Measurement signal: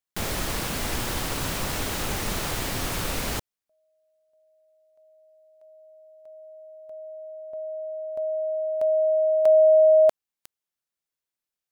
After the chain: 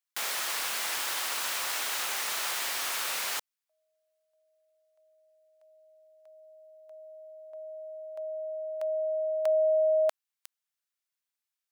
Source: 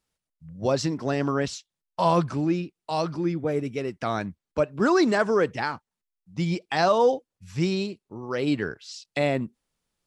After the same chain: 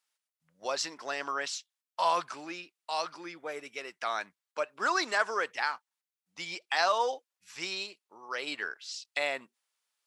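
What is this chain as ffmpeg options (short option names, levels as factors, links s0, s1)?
-af "highpass=1000"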